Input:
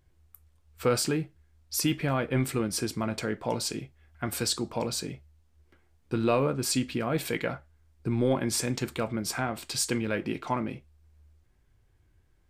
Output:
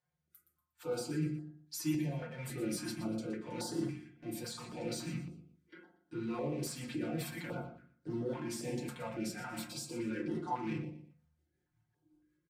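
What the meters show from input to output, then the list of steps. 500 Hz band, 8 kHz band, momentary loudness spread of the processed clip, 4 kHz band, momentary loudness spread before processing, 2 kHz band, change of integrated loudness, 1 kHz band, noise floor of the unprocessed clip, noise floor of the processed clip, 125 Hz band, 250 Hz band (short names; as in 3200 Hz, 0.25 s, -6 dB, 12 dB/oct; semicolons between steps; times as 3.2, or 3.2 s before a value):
-11.0 dB, -13.0 dB, 10 LU, -13.0 dB, 10 LU, -11.5 dB, -10.0 dB, -10.0 dB, -66 dBFS, -83 dBFS, -8.5 dB, -7.0 dB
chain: rattling part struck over -37 dBFS, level -32 dBFS; HPF 170 Hz 12 dB/oct; spectral noise reduction 19 dB; comb 5.6 ms, depth 90%; reverse; compressor 5:1, threshold -41 dBFS, peak gain reduction 20.5 dB; reverse; limiter -37 dBFS, peak gain reduction 10 dB; hard clip -39.5 dBFS, distortion -23 dB; rotary speaker horn 1 Hz, later 5.5 Hz, at 5.96; on a send: feedback echo 0.119 s, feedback 29%, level -12 dB; on the sum: FDN reverb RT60 0.51 s, low-frequency decay 1.3×, high-frequency decay 0.3×, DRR -5.5 dB; stepped notch 3.6 Hz 330–2400 Hz; gain +3 dB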